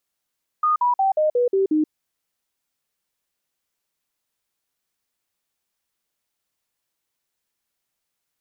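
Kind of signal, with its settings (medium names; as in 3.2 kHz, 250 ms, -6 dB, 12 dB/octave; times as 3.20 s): stepped sine 1.23 kHz down, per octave 3, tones 7, 0.13 s, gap 0.05 s -15.5 dBFS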